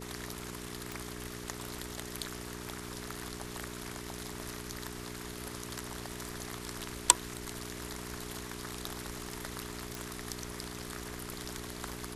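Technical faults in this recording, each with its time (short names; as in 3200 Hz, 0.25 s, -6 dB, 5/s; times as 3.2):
hum 60 Hz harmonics 7 -45 dBFS
0.92 pop
9.95 pop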